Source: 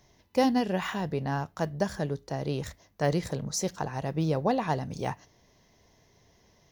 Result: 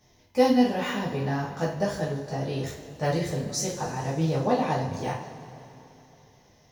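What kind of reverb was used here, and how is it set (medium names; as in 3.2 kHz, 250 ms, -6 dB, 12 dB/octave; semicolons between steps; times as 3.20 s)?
two-slope reverb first 0.39 s, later 3.2 s, from -18 dB, DRR -7.5 dB; trim -5.5 dB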